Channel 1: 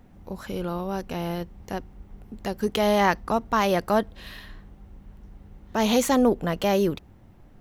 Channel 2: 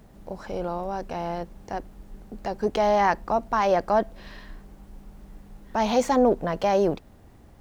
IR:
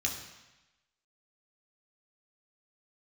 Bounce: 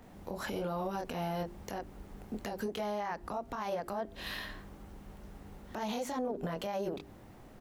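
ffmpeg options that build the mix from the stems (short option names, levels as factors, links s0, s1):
-filter_complex "[0:a]lowshelf=f=140:g=-9,volume=1.26[s0];[1:a]highpass=250,bandreject=f=50:t=h:w=6,bandreject=f=100:t=h:w=6,bandreject=f=150:t=h:w=6,bandreject=f=200:t=h:w=6,bandreject=f=250:t=h:w=6,bandreject=f=300:t=h:w=6,bandreject=f=350:t=h:w=6,bandreject=f=400:t=h:w=6,adelay=25,volume=0.794,asplit=2[s1][s2];[s2]apad=whole_len=335550[s3];[s0][s3]sidechaincompress=threshold=0.0224:ratio=8:attack=24:release=123[s4];[s4][s1]amix=inputs=2:normalize=0,acrossover=split=180[s5][s6];[s6]acompressor=threshold=0.0251:ratio=2.5[s7];[s5][s7]amix=inputs=2:normalize=0,alimiter=level_in=1.41:limit=0.0631:level=0:latency=1:release=116,volume=0.708"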